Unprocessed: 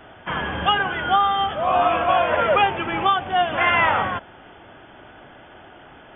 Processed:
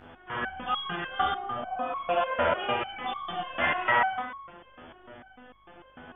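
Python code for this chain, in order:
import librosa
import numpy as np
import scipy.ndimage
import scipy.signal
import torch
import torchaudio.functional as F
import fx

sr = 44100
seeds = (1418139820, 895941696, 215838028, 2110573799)

y = fx.rev_schroeder(x, sr, rt60_s=0.82, comb_ms=29, drr_db=-4.0)
y = fx.dmg_buzz(y, sr, base_hz=50.0, harmonics=37, level_db=-42.0, tilt_db=-3, odd_only=False)
y = fx.air_absorb(y, sr, metres=490.0, at=(1.38, 1.96))
y = fx.echo_tape(y, sr, ms=119, feedback_pct=76, wet_db=-19.0, lp_hz=1700.0, drive_db=2.0, wow_cents=24)
y = fx.resonator_held(y, sr, hz=6.7, low_hz=83.0, high_hz=1100.0)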